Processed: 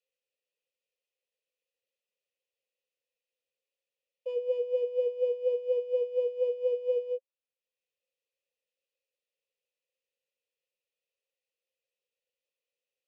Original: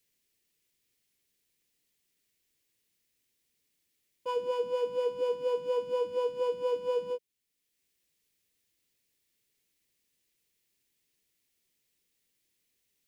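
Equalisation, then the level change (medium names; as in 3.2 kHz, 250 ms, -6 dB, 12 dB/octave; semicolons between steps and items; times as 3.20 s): vowel filter e; high-pass 410 Hz 12 dB/octave; static phaser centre 660 Hz, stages 4; +8.0 dB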